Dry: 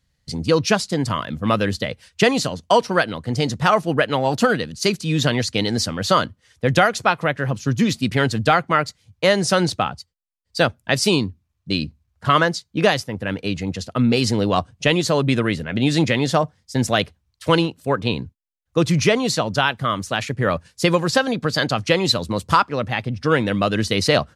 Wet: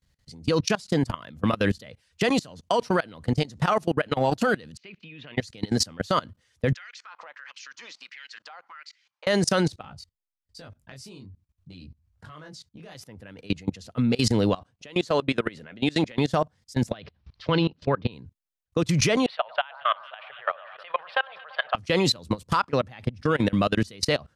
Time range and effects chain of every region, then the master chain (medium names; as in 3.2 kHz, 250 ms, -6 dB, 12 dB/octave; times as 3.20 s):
4.77–5.37 s: compression 4:1, threshold -25 dBFS + four-pole ladder low-pass 2.9 kHz, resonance 60% + bass shelf 130 Hz -10 dB
6.74–9.27 s: cabinet simulation 200–5800 Hz, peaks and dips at 220 Hz -7 dB, 390 Hz -7 dB, 690 Hz -7 dB, 3.6 kHz -3 dB + compression 10:1, threshold -28 dBFS + LFO high-pass sine 1.5 Hz 730–2300 Hz
9.82–12.95 s: bass shelf 170 Hz +9.5 dB + compression, threshold -22 dBFS + chorus 1.2 Hz, delay 19.5 ms, depth 3.8 ms
14.59–16.18 s: high-pass 310 Hz 6 dB/octave + treble shelf 8.3 kHz -10 dB
16.91–18.12 s: steep low-pass 5 kHz + dynamic bell 150 Hz, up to +6 dB, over -38 dBFS, Q 6.1 + upward compressor, threshold -26 dBFS
19.26–21.75 s: companding laws mixed up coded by A + elliptic band-pass 640–3200 Hz + echo whose repeats swap between lows and highs 113 ms, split 1.5 kHz, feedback 78%, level -13 dB
whole clip: peak limiter -12.5 dBFS; level held to a coarse grid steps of 23 dB; trim +2 dB